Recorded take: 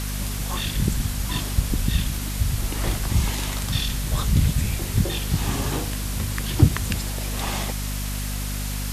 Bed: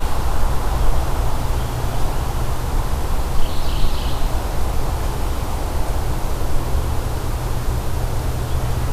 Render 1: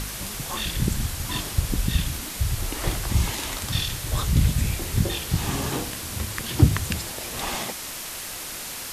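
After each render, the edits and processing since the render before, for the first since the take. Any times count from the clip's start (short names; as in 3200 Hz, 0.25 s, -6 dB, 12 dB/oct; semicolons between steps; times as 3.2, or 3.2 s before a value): de-hum 50 Hz, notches 5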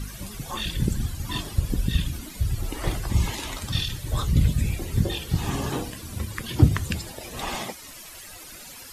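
denoiser 14 dB, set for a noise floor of -35 dBFS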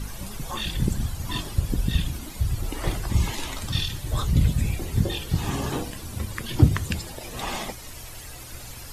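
add bed -22.5 dB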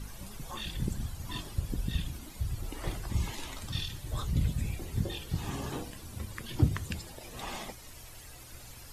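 gain -9 dB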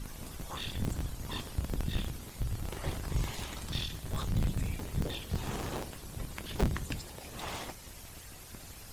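cycle switcher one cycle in 3, inverted; soft clip -20 dBFS, distortion -15 dB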